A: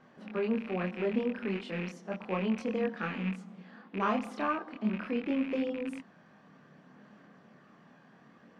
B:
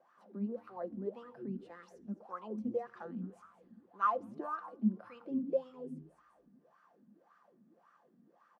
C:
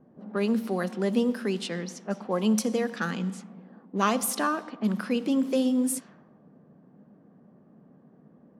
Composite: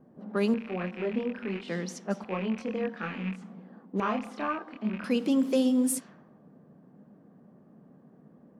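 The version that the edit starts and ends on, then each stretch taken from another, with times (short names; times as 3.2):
C
0.54–1.68 from A
2.24–3.42 from A
4–5.04 from A
not used: B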